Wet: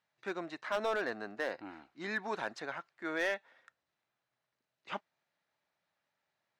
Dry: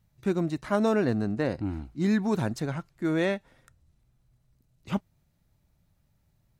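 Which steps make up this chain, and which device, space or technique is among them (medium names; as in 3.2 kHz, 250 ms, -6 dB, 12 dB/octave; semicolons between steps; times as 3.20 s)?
megaphone (band-pass 660–4000 Hz; peaking EQ 1.7 kHz +4 dB 0.38 oct; hard clipper -24.5 dBFS, distortion -13 dB); trim -1.5 dB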